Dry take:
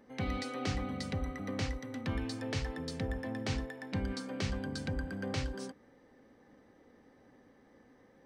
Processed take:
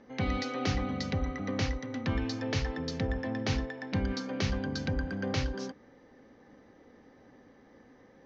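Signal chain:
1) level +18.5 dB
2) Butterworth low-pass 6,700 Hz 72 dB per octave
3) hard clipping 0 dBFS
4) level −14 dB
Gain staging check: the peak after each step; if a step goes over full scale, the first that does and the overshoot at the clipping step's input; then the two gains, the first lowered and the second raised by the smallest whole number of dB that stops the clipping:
−3.5, −3.0, −3.0, −17.0 dBFS
no step passes full scale

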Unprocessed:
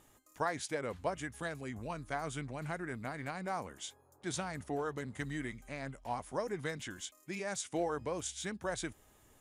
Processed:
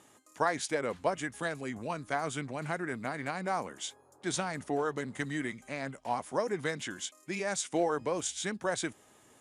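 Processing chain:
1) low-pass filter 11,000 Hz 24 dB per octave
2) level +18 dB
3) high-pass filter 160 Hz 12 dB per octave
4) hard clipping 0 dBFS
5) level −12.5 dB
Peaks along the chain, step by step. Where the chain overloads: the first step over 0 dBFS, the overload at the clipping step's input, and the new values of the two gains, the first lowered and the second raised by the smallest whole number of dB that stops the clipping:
−20.5, −2.5, −1.5, −1.5, −14.0 dBFS
no step passes full scale

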